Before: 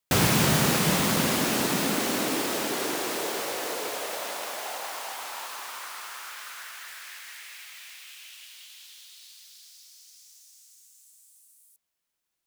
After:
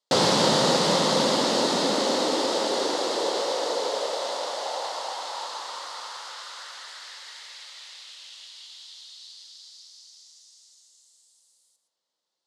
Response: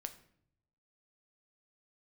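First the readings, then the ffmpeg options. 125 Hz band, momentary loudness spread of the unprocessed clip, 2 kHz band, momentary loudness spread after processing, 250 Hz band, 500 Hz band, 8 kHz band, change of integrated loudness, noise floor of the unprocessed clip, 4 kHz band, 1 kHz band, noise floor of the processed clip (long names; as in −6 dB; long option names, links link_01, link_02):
−6.0 dB, 22 LU, −3.0 dB, 21 LU, −0.5 dB, +7.0 dB, −2.0 dB, +2.0 dB, −83 dBFS, +5.0 dB, +4.5 dB, −83 dBFS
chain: -filter_complex "[0:a]aexciter=amount=1.9:drive=6.5:freq=3700,highpass=230,equalizer=frequency=530:width_type=q:width=4:gain=9,equalizer=frequency=900:width_type=q:width=4:gain=5,equalizer=frequency=1600:width_type=q:width=4:gain=-5,equalizer=frequency=2400:width_type=q:width=4:gain=-9,equalizer=frequency=5700:width_type=q:width=4:gain=-3,lowpass=frequency=6000:width=0.5412,lowpass=frequency=6000:width=1.3066,asplit=2[link_01][link_02];[1:a]atrim=start_sample=2205,adelay=116[link_03];[link_02][link_03]afir=irnorm=-1:irlink=0,volume=-6.5dB[link_04];[link_01][link_04]amix=inputs=2:normalize=0,volume=1.5dB"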